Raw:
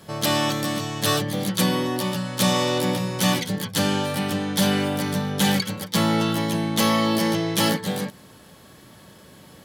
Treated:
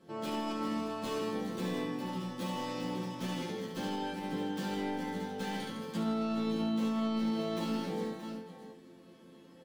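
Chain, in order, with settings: self-modulated delay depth 0.081 ms; in parallel at +2.5 dB: hard clipper -20 dBFS, distortion -11 dB; on the sum: treble shelf 7 kHz -11 dB; chord resonator F3 major, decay 0.4 s; multi-tap echo 71/160/379/624 ms -4/-8/-18.5/-11.5 dB; peak limiter -26 dBFS, peak gain reduction 9.5 dB; peaking EQ 320 Hz +13 dB 1.2 oct; trim -5 dB

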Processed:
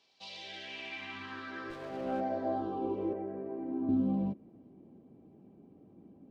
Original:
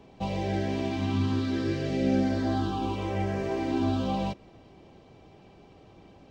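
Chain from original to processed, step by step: 3.13–3.89 s: three-band isolator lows -12 dB, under 390 Hz, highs -15 dB, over 2.1 kHz; band-pass sweep 4.6 kHz -> 240 Hz, 0.17–3.55 s; 1.70–2.21 s: sliding maximum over 9 samples; trim +3 dB

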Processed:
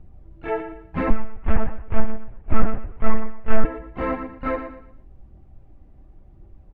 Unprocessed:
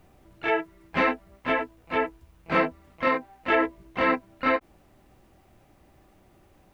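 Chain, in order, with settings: dynamic bell 1.3 kHz, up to +4 dB, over -34 dBFS, Q 1.1; feedback delay 117 ms, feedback 30%, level -8.5 dB; 1.10–3.65 s: monotone LPC vocoder at 8 kHz 220 Hz; tilt EQ -4.5 dB/octave; phaser 0.93 Hz, delay 4.6 ms, feedback 29%; trim -7 dB

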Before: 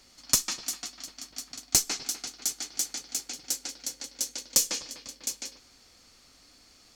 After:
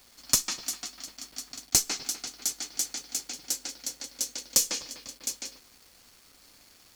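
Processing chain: bit crusher 9-bit

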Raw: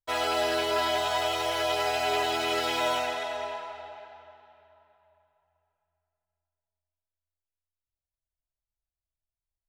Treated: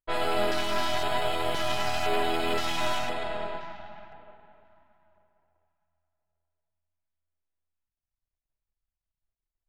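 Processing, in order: partial rectifier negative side -12 dB; level-controlled noise filter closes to 2.6 kHz, open at -27 dBFS; peaking EQ 81 Hz -6 dB 1.5 oct; LFO notch square 0.97 Hz 460–5900 Hz; bass shelf 430 Hz +8 dB; trim +1.5 dB

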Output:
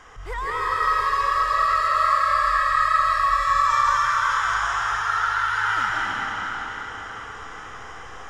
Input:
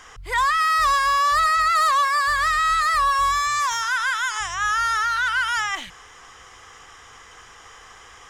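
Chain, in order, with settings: treble shelf 2.2 kHz -12 dB; peak limiter -25.5 dBFS, peak gain reduction 10 dB; reverberation RT60 5.3 s, pre-delay 110 ms, DRR -7.5 dB; trim +1.5 dB

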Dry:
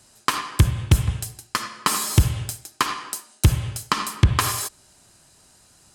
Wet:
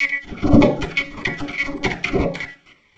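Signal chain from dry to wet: slices played last to first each 102 ms, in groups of 4; resonant low shelf 340 Hz +13.5 dB, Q 1.5; de-hum 169.5 Hz, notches 7; slow attack 104 ms; phase dispersion lows, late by 55 ms, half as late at 340 Hz; trance gate "..x....xxxx..x" 124 bpm -12 dB; auto-wah 440–1100 Hz, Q 4.3, down, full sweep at -16.5 dBFS; monotone LPC vocoder at 8 kHz 140 Hz; reverberation RT60 0.80 s, pre-delay 3 ms, DRR 7 dB; speed mistake 7.5 ips tape played at 15 ips; loudness maximiser +19 dB; Shepard-style phaser falling 1.8 Hz

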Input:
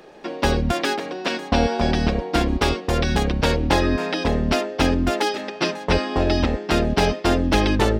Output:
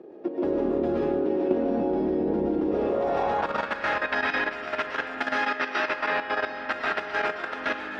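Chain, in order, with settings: in parallel at -10 dB: overload inside the chain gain 12.5 dB; on the sum: compression 6:1, threshold -22 dBFS, peak gain reduction 10.5 dB; reverberation RT60 2.6 s, pre-delay 80 ms, DRR -7 dB; band-pass sweep 340 Hz -> 1.6 kHz, 2.60–3.79 s; level held to a coarse grid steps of 10 dB; trim +5 dB

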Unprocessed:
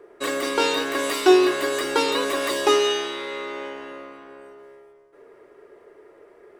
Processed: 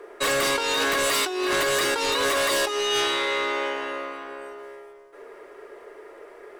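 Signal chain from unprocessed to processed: peaking EQ 130 Hz -14 dB 2.5 oct; hum notches 60/120/180/240/300/360 Hz; compressor with a negative ratio -28 dBFS, ratio -1; sine folder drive 9 dB, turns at -13 dBFS; trim -6 dB

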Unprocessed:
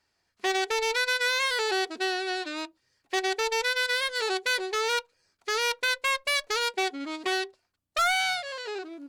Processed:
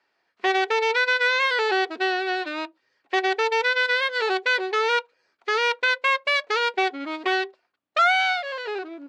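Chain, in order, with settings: band-pass 330–2900 Hz; trim +6.5 dB

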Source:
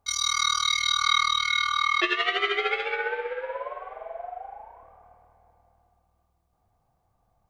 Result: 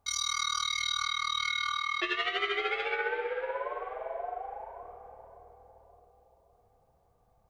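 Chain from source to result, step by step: compression 1.5:1, threshold -33 dBFS, peak gain reduction 6 dB; peak limiter -20 dBFS, peak gain reduction 5.5 dB; on a send: filtered feedback delay 566 ms, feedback 59%, low-pass 850 Hz, level -10 dB

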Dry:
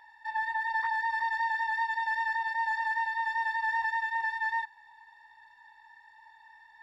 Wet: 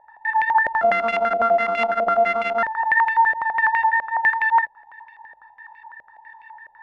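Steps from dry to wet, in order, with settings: 0.81–2.63 s: sorted samples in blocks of 64 samples; step-sequenced low-pass 12 Hz 600–2400 Hz; trim +5.5 dB

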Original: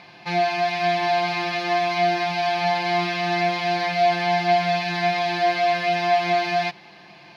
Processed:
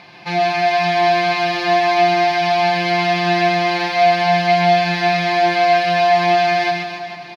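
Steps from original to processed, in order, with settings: reverse bouncing-ball echo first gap 130 ms, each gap 1.15×, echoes 5; trim +3.5 dB

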